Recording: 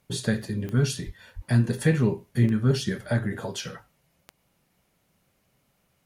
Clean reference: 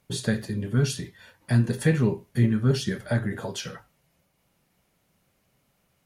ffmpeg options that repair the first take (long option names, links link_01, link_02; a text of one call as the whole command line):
ffmpeg -i in.wav -filter_complex "[0:a]adeclick=threshold=4,asplit=3[link_01][link_02][link_03];[link_01]afade=type=out:start_time=1.05:duration=0.02[link_04];[link_02]highpass=frequency=140:width=0.5412,highpass=frequency=140:width=1.3066,afade=type=in:start_time=1.05:duration=0.02,afade=type=out:start_time=1.17:duration=0.02[link_05];[link_03]afade=type=in:start_time=1.17:duration=0.02[link_06];[link_04][link_05][link_06]amix=inputs=3:normalize=0,asplit=3[link_07][link_08][link_09];[link_07]afade=type=out:start_time=1.35:duration=0.02[link_10];[link_08]highpass=frequency=140:width=0.5412,highpass=frequency=140:width=1.3066,afade=type=in:start_time=1.35:duration=0.02,afade=type=out:start_time=1.47:duration=0.02[link_11];[link_09]afade=type=in:start_time=1.47:duration=0.02[link_12];[link_10][link_11][link_12]amix=inputs=3:normalize=0" out.wav